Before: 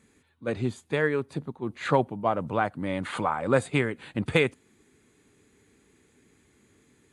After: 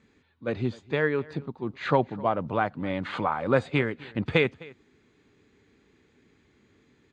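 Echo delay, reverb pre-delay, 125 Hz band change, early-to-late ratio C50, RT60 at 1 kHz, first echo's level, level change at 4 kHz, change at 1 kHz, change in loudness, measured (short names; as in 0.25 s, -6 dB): 0.257 s, none, 0.0 dB, none, none, -22.0 dB, 0.0 dB, 0.0 dB, 0.0 dB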